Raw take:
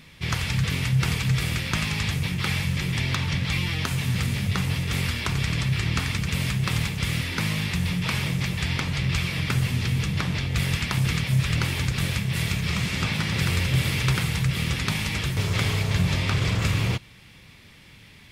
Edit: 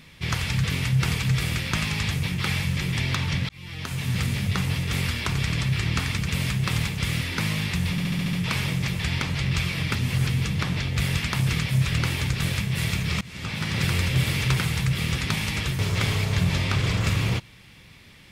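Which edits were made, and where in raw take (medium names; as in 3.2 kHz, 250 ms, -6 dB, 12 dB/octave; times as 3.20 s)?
3.49–4.18 s: fade in
7.91 s: stutter 0.07 s, 7 plays
9.53–9.85 s: reverse
12.79–13.35 s: fade in, from -22.5 dB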